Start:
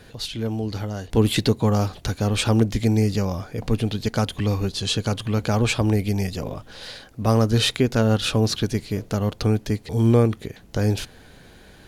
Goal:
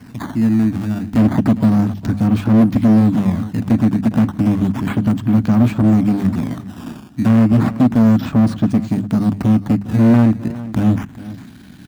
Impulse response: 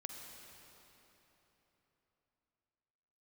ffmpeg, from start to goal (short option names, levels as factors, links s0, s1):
-filter_complex "[0:a]aeval=exprs='if(lt(val(0),0),0.251*val(0),val(0))':c=same,asplit=2[s0][s1];[s1]alimiter=limit=0.2:level=0:latency=1:release=53,volume=0.944[s2];[s0][s2]amix=inputs=2:normalize=0,acrusher=samples=12:mix=1:aa=0.000001:lfo=1:lforange=19.2:lforate=0.32,lowshelf=f=330:t=q:w=3:g=8.5,acrossover=split=1800[s3][s4];[s4]acompressor=threshold=0.01:ratio=6[s5];[s3][s5]amix=inputs=2:normalize=0,asoftclip=type=hard:threshold=0.473,highpass=100,equalizer=f=520:t=o:w=0.22:g=-8,bandreject=f=50:t=h:w=6,bandreject=f=100:t=h:w=6,bandreject=f=150:t=h:w=6,bandreject=f=200:t=h:w=6,aecho=1:1:407:0.15"